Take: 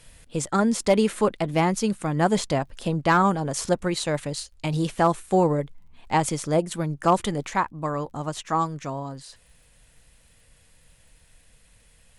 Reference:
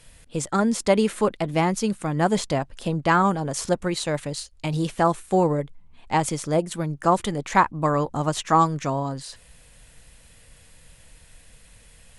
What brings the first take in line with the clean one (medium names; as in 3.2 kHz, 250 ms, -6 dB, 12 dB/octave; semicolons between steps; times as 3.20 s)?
clip repair -10 dBFS; de-click; trim 0 dB, from 7.50 s +6 dB